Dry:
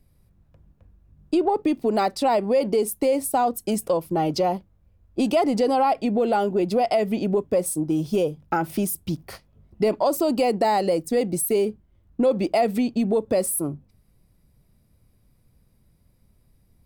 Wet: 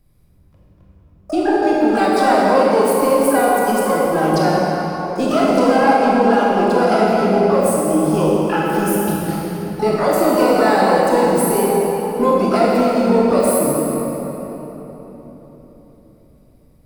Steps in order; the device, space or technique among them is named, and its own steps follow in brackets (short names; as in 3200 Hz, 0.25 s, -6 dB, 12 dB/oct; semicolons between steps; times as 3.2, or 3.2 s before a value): shimmer-style reverb (harmoniser +12 st -8 dB; reverb RT60 4.0 s, pre-delay 22 ms, DRR -5.5 dB)